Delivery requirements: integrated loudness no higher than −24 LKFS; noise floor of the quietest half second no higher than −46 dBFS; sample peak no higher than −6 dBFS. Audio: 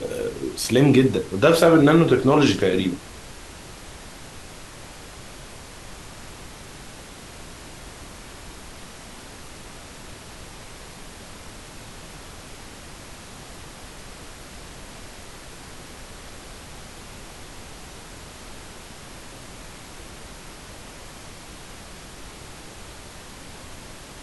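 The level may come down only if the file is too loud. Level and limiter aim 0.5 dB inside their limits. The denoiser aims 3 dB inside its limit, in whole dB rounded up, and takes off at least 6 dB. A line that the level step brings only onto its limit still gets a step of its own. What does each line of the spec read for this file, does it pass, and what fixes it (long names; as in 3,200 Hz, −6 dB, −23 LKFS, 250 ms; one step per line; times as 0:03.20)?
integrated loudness −18.5 LKFS: out of spec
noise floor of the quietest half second −41 dBFS: out of spec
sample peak −5.0 dBFS: out of spec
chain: level −6 dB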